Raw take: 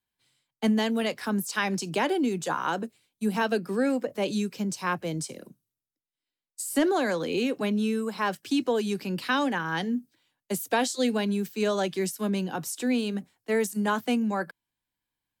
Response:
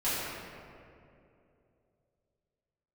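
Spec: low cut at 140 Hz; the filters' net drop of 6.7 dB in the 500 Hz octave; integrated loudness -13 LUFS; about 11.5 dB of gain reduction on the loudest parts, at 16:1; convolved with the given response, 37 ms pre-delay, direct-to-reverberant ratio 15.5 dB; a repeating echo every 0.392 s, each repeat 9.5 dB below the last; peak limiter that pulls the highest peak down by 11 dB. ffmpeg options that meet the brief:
-filter_complex "[0:a]highpass=140,equalizer=f=500:t=o:g=-8.5,acompressor=threshold=-34dB:ratio=16,alimiter=level_in=9.5dB:limit=-24dB:level=0:latency=1,volume=-9.5dB,aecho=1:1:392|784|1176|1568:0.335|0.111|0.0365|0.012,asplit=2[a][b];[1:a]atrim=start_sample=2205,adelay=37[c];[b][c]afir=irnorm=-1:irlink=0,volume=-25.5dB[d];[a][d]amix=inputs=2:normalize=0,volume=28.5dB"

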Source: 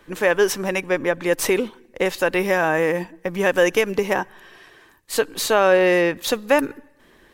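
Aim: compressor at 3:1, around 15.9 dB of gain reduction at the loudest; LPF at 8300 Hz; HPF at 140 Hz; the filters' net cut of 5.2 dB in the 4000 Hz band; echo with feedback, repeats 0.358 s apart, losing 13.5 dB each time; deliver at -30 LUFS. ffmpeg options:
-af "highpass=140,lowpass=8.3k,equalizer=f=4k:t=o:g=-7,acompressor=threshold=-35dB:ratio=3,aecho=1:1:358|716:0.211|0.0444,volume=4.5dB"

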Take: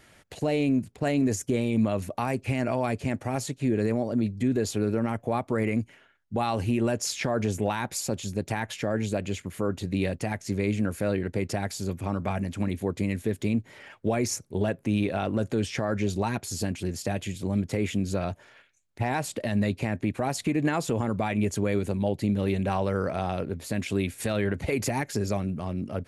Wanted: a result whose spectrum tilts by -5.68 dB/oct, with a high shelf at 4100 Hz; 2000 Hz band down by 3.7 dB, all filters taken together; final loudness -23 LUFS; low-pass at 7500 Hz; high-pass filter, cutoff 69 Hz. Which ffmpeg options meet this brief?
-af "highpass=69,lowpass=7.5k,equalizer=f=2k:t=o:g=-6,highshelf=f=4.1k:g=5.5,volume=6dB"

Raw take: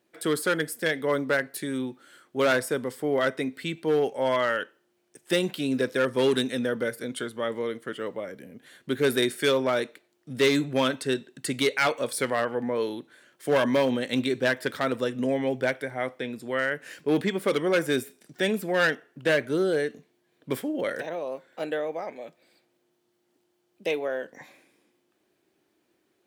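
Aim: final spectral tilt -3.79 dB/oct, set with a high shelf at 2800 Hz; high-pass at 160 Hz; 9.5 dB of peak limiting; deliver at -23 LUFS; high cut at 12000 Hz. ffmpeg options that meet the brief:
-af "highpass=160,lowpass=12k,highshelf=f=2.8k:g=-6.5,volume=8.5dB,alimiter=limit=-11.5dB:level=0:latency=1"

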